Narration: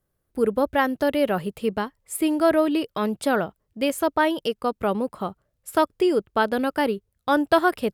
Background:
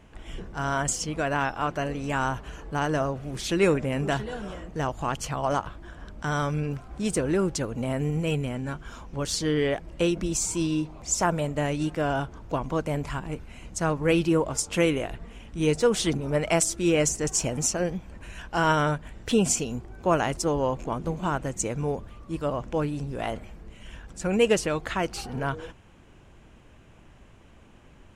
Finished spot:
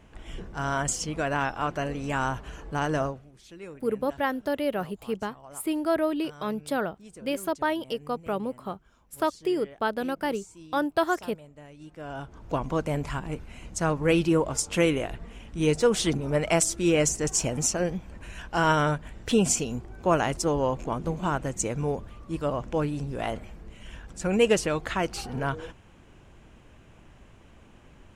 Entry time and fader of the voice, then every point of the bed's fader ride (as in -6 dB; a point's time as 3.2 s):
3.45 s, -6.0 dB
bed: 3.06 s -1 dB
3.32 s -21 dB
11.74 s -21 dB
12.52 s 0 dB